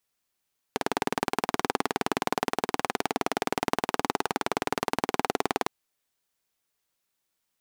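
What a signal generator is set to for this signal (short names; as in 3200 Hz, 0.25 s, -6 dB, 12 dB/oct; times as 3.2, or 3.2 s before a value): single-cylinder engine model, steady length 4.91 s, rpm 2300, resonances 280/410/750 Hz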